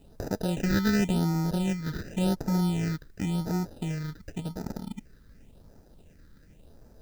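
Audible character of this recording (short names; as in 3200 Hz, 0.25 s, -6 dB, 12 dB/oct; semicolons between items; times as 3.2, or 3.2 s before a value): aliases and images of a low sample rate 1100 Hz, jitter 0%; phasing stages 6, 0.91 Hz, lowest notch 710–3000 Hz; a quantiser's noise floor 12-bit, dither triangular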